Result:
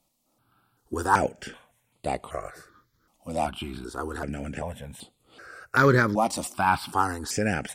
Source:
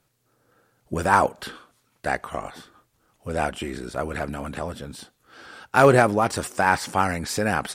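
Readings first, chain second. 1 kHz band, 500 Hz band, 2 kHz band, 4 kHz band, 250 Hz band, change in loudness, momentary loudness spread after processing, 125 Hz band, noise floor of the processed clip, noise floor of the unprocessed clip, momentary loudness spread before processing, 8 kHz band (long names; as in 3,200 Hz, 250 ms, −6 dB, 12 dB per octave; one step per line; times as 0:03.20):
−3.0 dB, −5.5 dB, −3.0 dB, −3.0 dB, −2.0 dB, −3.5 dB, 21 LU, −1.5 dB, −72 dBFS, −70 dBFS, 20 LU, −2.0 dB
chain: step-sequenced phaser 2.6 Hz 420–5,700 Hz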